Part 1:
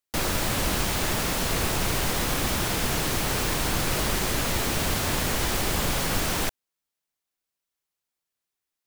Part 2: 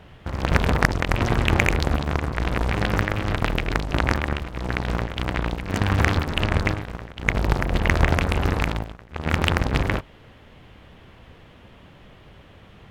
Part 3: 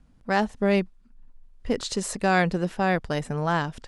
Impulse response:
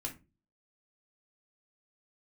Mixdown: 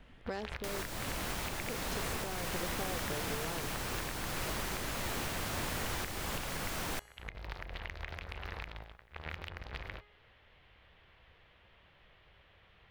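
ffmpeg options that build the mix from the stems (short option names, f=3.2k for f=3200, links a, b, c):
-filter_complex "[0:a]adelay=500,volume=-1dB[a];[1:a]equalizer=f=125:t=o:w=1:g=-5,equalizer=f=250:t=o:w=1:g=-11,equalizer=f=2k:t=o:w=1:g=5,equalizer=f=4k:t=o:w=1:g=5,equalizer=f=8k:t=o:w=1:g=-11,volume=-14dB[b];[2:a]equalizer=f=440:t=o:w=0.77:g=11.5,acompressor=threshold=-25dB:ratio=6,volume=-2.5dB[c];[a][b][c]amix=inputs=3:normalize=0,bandreject=f=415.2:t=h:w=4,bandreject=f=830.4:t=h:w=4,bandreject=f=1.2456k:t=h:w=4,bandreject=f=1.6608k:t=h:w=4,bandreject=f=2.076k:t=h:w=4,bandreject=f=2.4912k:t=h:w=4,bandreject=f=2.9064k:t=h:w=4,bandreject=f=3.3216k:t=h:w=4,bandreject=f=3.7368k:t=h:w=4,bandreject=f=4.152k:t=h:w=4,bandreject=f=4.5672k:t=h:w=4,bandreject=f=4.9824k:t=h:w=4,bandreject=f=5.3976k:t=h:w=4,bandreject=f=5.8128k:t=h:w=4,bandreject=f=6.228k:t=h:w=4,bandreject=f=6.6432k:t=h:w=4,bandreject=f=7.0584k:t=h:w=4,bandreject=f=7.4736k:t=h:w=4,bandreject=f=7.8888k:t=h:w=4,bandreject=f=8.304k:t=h:w=4,bandreject=f=8.7192k:t=h:w=4,bandreject=f=9.1344k:t=h:w=4,bandreject=f=9.5496k:t=h:w=4,bandreject=f=9.9648k:t=h:w=4,bandreject=f=10.38k:t=h:w=4,bandreject=f=10.7952k:t=h:w=4,bandreject=f=11.2104k:t=h:w=4,bandreject=f=11.6256k:t=h:w=4,bandreject=f=12.0408k:t=h:w=4,bandreject=f=12.456k:t=h:w=4,acrossover=split=640|2700[d][e][f];[d]acompressor=threshold=-39dB:ratio=4[g];[e]acompressor=threshold=-41dB:ratio=4[h];[f]acompressor=threshold=-43dB:ratio=4[i];[g][h][i]amix=inputs=3:normalize=0,alimiter=level_in=1dB:limit=-24dB:level=0:latency=1:release=303,volume=-1dB"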